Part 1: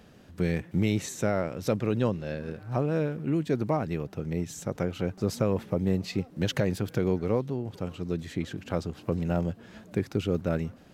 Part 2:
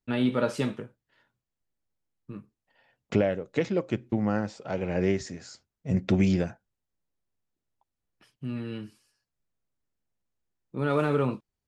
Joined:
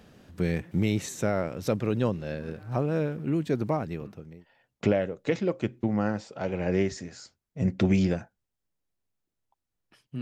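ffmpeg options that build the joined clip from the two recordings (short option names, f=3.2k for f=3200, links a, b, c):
-filter_complex "[0:a]apad=whole_dur=10.21,atrim=end=10.21,atrim=end=4.46,asetpts=PTS-STARTPTS[a];[1:a]atrim=start=1.97:end=8.5,asetpts=PTS-STARTPTS[b];[a][b]acrossfade=d=0.78:c1=tri:c2=tri"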